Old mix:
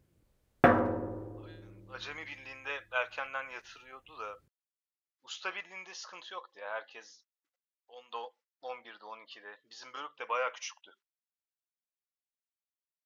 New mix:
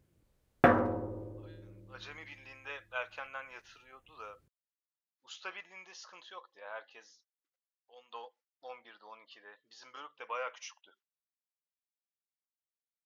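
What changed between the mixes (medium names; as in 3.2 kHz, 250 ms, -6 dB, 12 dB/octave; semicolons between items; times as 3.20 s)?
speech -5.5 dB; reverb: off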